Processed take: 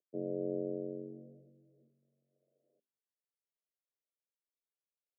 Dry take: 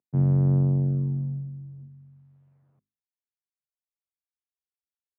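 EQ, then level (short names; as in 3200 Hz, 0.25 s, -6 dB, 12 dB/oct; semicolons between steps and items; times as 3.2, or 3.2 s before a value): HPF 370 Hz 24 dB/oct; Chebyshev low-pass 630 Hz, order 6; +3.0 dB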